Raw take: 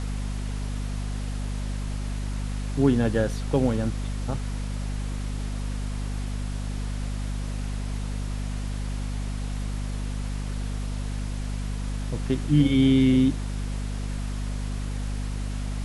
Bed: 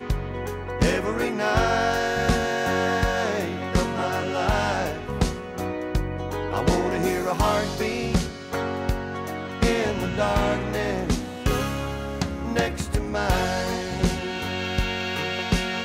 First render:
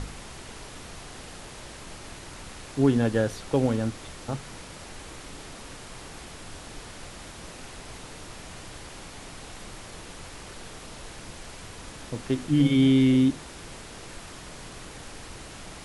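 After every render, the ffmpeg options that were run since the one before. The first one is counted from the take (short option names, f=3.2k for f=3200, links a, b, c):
-af "bandreject=f=50:t=h:w=6,bandreject=f=100:t=h:w=6,bandreject=f=150:t=h:w=6,bandreject=f=200:t=h:w=6,bandreject=f=250:t=h:w=6"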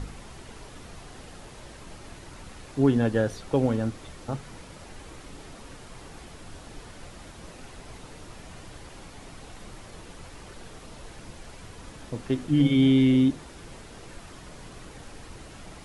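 -af "afftdn=nr=6:nf=-43"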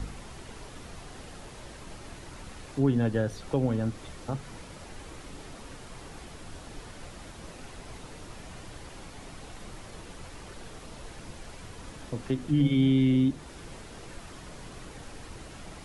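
-filter_complex "[0:a]acrossover=split=190[a][b];[b]acompressor=threshold=-34dB:ratio=1.5[c];[a][c]amix=inputs=2:normalize=0"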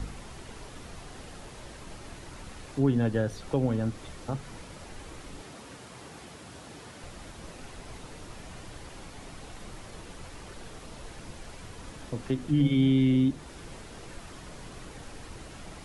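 -filter_complex "[0:a]asettb=1/sr,asplit=3[a][b][c];[a]atrim=end=5.414[d];[b]atrim=start=5.41:end=7.04,asetpts=PTS-STARTPTS,afade=t=in:d=0.004:c=qsin,afade=t=out:st=1.626:d=0.004:c=qsin,highpass=99[e];[c]atrim=start=7.036[f];[d][e]acrossfade=d=0.004:c1=hsin:c2=qsin[g];[g][f]acrossfade=d=0.004:c1=qsin:c2=hsin"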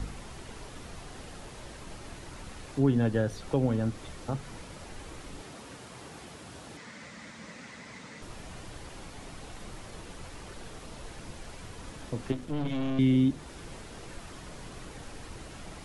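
-filter_complex "[0:a]asettb=1/sr,asplit=3[a][b][c];[a]atrim=end=6.774[d];[b]atrim=start=6.77:end=8.22,asetpts=PTS-STARTPTS,afade=t=in:d=0.004:c=qsin,afade=t=out:st=1.446:d=0.004:c=qsin,highpass=160,equalizer=f=210:t=q:w=4:g=7,equalizer=f=370:t=q:w=4:g=-9,equalizer=f=730:t=q:w=4:g=-6,equalizer=f=2k:t=q:w=4:g=9,equalizer=f=2.9k:t=q:w=4:g=-3,lowpass=f=8.2k:w=0.5412,lowpass=f=8.2k:w=1.3066[e];[c]atrim=start=8.216[f];[d][e]acrossfade=d=0.004:c1=hsin:c2=qsin[g];[g][f]acrossfade=d=0.004:c1=qsin:c2=hsin,asettb=1/sr,asplit=3[h][i][j];[h]atrim=end=12.324[k];[i]atrim=start=12.32:end=12.99,asetpts=PTS-STARTPTS,afade=t=in:d=0.004:c=qsin,afade=t=out:st=0.666:d=0.004:c=qsin,aeval=exprs='(tanh(28.2*val(0)+0.65)-tanh(0.65))/28.2':c=same[l];[j]atrim=start=12.986[m];[k][l]acrossfade=d=0.004:c1=hsin:c2=qsin[n];[n][m]acrossfade=d=0.004:c1=qsin:c2=hsin"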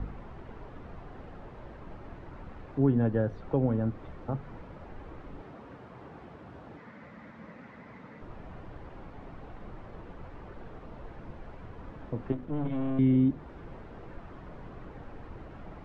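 -af "lowpass=1.4k"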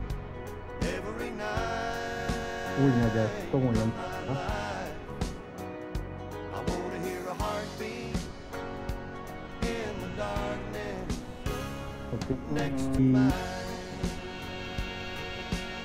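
-filter_complex "[1:a]volume=-10.5dB[a];[0:a][a]amix=inputs=2:normalize=0"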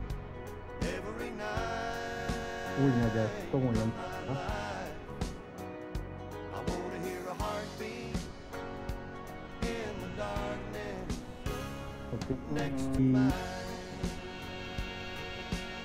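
-af "volume=-3.5dB"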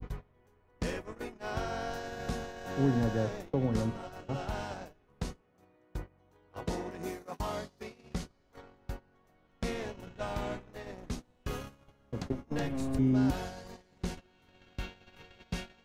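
-af "agate=range=-23dB:threshold=-37dB:ratio=16:detection=peak,adynamicequalizer=threshold=0.002:dfrequency=1900:dqfactor=0.95:tfrequency=1900:tqfactor=0.95:attack=5:release=100:ratio=0.375:range=2:mode=cutabove:tftype=bell"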